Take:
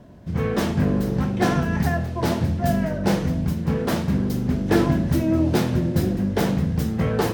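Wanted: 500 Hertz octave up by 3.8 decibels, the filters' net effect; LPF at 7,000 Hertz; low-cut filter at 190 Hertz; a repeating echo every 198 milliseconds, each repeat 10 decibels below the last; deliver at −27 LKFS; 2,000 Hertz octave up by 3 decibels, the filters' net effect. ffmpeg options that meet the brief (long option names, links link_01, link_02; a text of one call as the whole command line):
ffmpeg -i in.wav -af "highpass=190,lowpass=7000,equalizer=frequency=500:width_type=o:gain=5,equalizer=frequency=2000:width_type=o:gain=3.5,aecho=1:1:198|396|594|792:0.316|0.101|0.0324|0.0104,volume=-4.5dB" out.wav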